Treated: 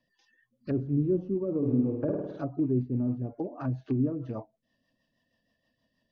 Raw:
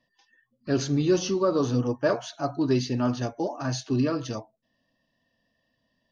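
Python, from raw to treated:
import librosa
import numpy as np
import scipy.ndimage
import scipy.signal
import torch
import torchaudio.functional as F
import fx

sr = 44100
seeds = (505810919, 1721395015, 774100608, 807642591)

y = fx.rattle_buzz(x, sr, strikes_db=-30.0, level_db=-32.0)
y = fx.env_lowpass_down(y, sr, base_hz=360.0, full_db=-24.0)
y = fx.rotary(y, sr, hz=6.3)
y = fx.room_flutter(y, sr, wall_m=9.0, rt60_s=0.98, at=(1.57, 2.42))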